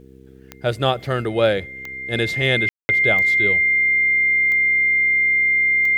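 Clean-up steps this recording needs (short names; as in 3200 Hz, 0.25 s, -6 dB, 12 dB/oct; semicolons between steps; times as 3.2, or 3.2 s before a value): de-click; de-hum 65.6 Hz, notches 7; notch 2100 Hz, Q 30; room tone fill 2.69–2.89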